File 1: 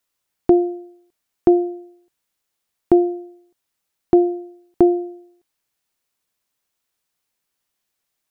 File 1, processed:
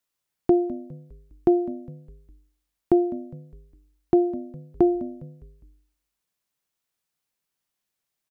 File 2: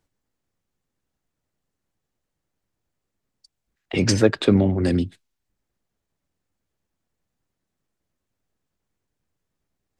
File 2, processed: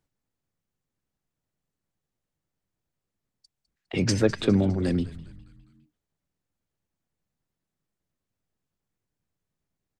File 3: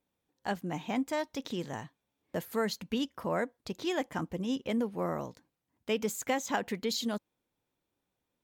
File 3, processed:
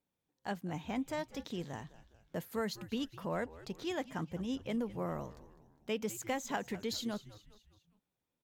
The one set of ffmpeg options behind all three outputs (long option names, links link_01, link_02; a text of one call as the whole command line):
ffmpeg -i in.wav -filter_complex "[0:a]equalizer=frequency=150:width_type=o:width=0.63:gain=4.5,asplit=2[link_01][link_02];[link_02]asplit=4[link_03][link_04][link_05][link_06];[link_03]adelay=204,afreqshift=-100,volume=-17dB[link_07];[link_04]adelay=408,afreqshift=-200,volume=-23dB[link_08];[link_05]adelay=612,afreqshift=-300,volume=-29dB[link_09];[link_06]adelay=816,afreqshift=-400,volume=-35.1dB[link_10];[link_07][link_08][link_09][link_10]amix=inputs=4:normalize=0[link_11];[link_01][link_11]amix=inputs=2:normalize=0,volume=-5.5dB" out.wav